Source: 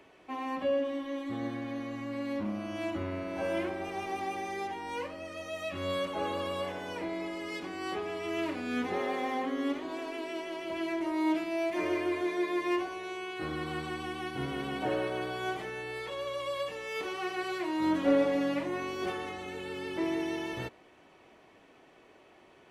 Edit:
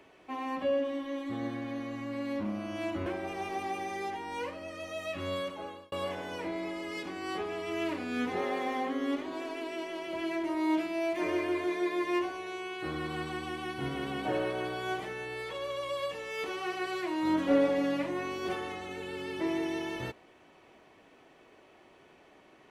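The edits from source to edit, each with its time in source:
3.06–3.63 cut
5.8–6.49 fade out

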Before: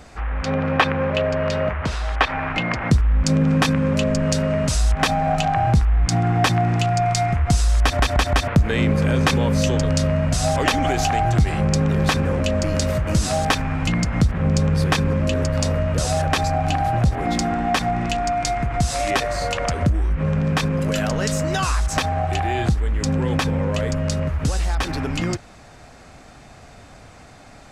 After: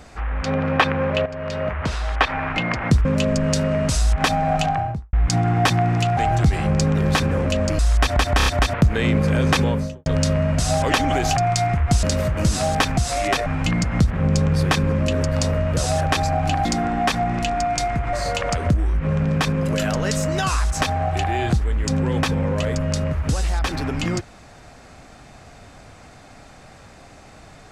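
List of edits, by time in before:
1.26–1.84 fade in, from -12.5 dB
3.05–3.84 cut
5.41–5.92 studio fade out
6.96–7.62 swap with 11.11–12.73
8.2 stutter 0.03 s, 4 plays
9.35–9.8 studio fade out
16.86–17.32 cut
18.8–19.29 move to 13.67

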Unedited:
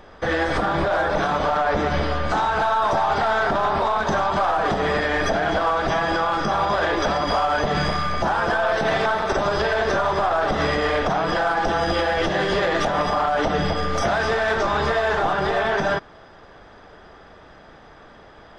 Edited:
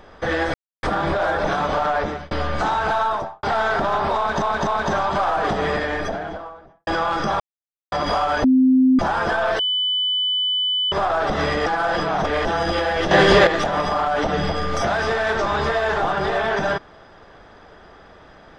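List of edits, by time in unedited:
0.54 insert silence 0.29 s
1.66–2.02 fade out
2.73–3.14 studio fade out
3.88–4.13 loop, 3 plays
4.78–6.08 studio fade out
6.61–7.13 mute
7.65–8.2 bleep 259 Hz -11 dBFS
8.8–10.13 bleep 3000 Hz -18 dBFS
10.87–11.66 reverse
12.32–12.68 gain +8.5 dB

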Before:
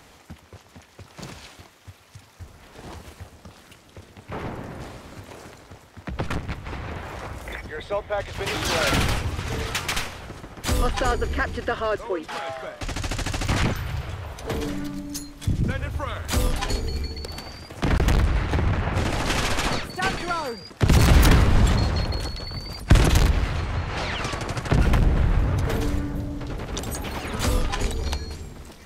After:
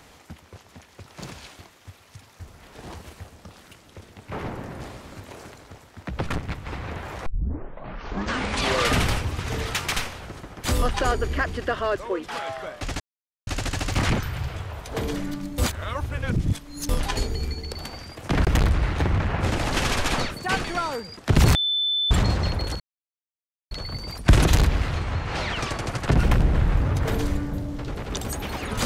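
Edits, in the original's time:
7.26 tape start 1.85 s
13 insert silence 0.47 s
15.11–16.42 reverse
21.08–21.64 bleep 3520 Hz -20.5 dBFS
22.33 insert silence 0.91 s

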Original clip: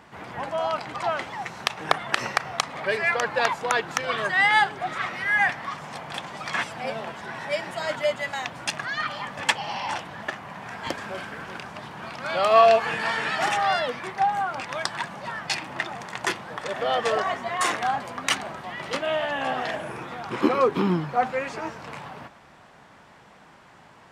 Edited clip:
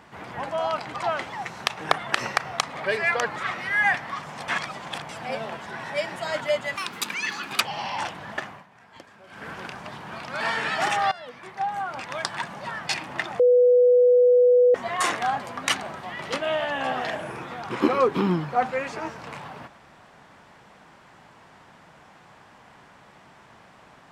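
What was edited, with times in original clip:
3.36–4.91 cut
6.03–6.64 reverse
8.31–9.51 speed 142%
10.38–11.37 dip -16.5 dB, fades 0.18 s
12.31–13.01 cut
13.72–15.31 fade in equal-power, from -20 dB
16–17.35 bleep 493 Hz -13 dBFS

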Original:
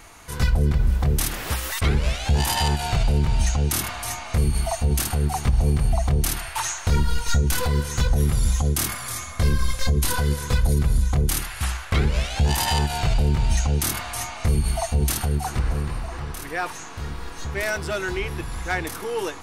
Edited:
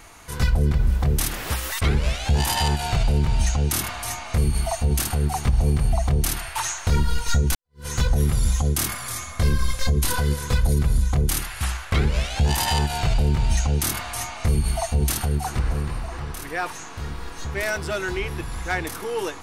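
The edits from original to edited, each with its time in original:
7.55–7.86 fade in exponential

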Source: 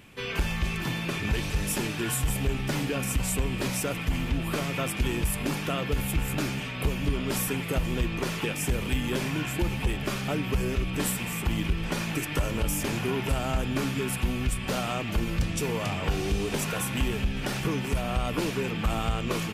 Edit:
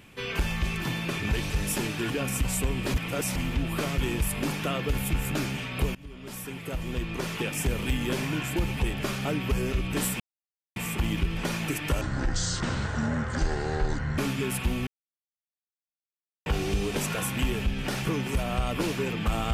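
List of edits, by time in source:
2.1–2.85 cut
3.69–4.11 reverse
4.73–5.01 cut
6.98–8.62 fade in, from -22 dB
11.23 insert silence 0.56 s
12.48–13.76 speed 59%
14.45–16.04 mute

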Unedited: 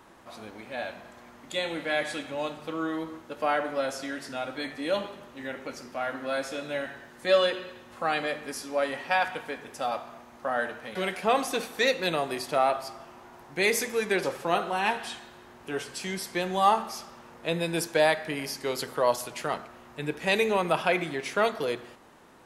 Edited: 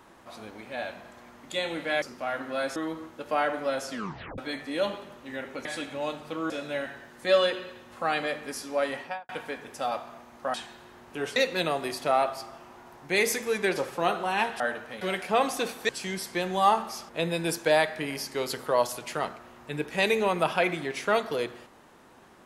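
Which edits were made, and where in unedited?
2.02–2.87 swap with 5.76–6.5
4.02 tape stop 0.47 s
8.95–9.29 studio fade out
10.54–11.83 swap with 15.07–15.89
17.09–17.38 cut

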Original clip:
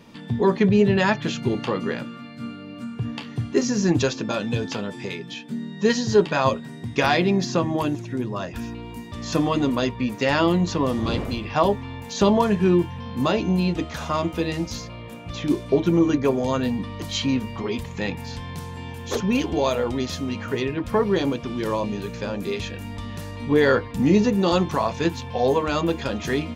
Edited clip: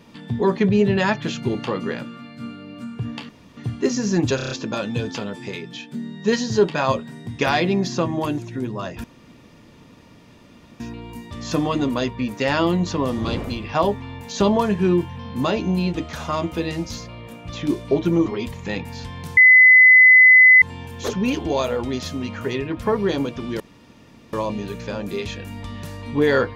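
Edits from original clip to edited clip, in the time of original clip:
3.29 insert room tone 0.28 s
4.08 stutter 0.03 s, 6 plays
8.61 insert room tone 1.76 s
16.07–17.58 cut
18.69 add tone 2020 Hz -6.5 dBFS 1.25 s
21.67 insert room tone 0.73 s

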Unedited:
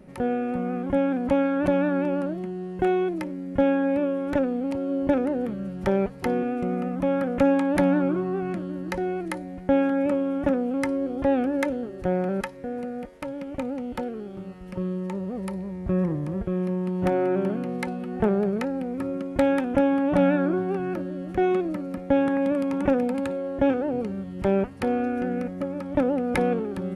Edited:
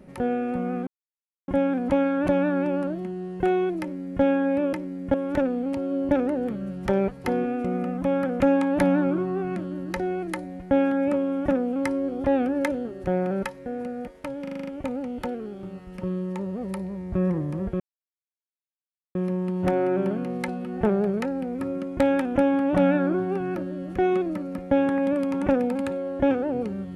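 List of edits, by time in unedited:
0.87 insert silence 0.61 s
3.2–3.61 copy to 4.12
13.41 stutter 0.04 s, 7 plays
16.54 insert silence 1.35 s

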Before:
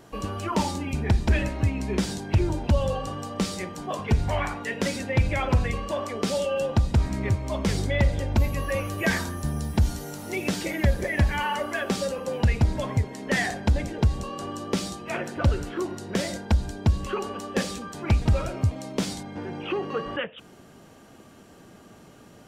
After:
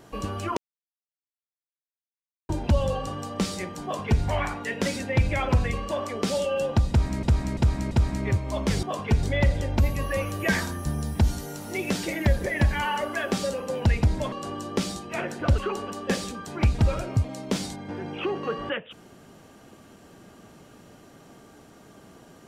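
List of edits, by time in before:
0.57–2.49 mute
3.83–4.23 copy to 7.81
6.89–7.23 loop, 4 plays
12.9–14.28 cut
15.54–17.05 cut

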